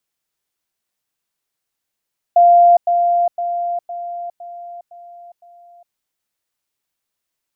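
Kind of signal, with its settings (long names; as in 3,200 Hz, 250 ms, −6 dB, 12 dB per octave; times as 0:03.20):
level staircase 696 Hz −6 dBFS, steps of −6 dB, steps 7, 0.41 s 0.10 s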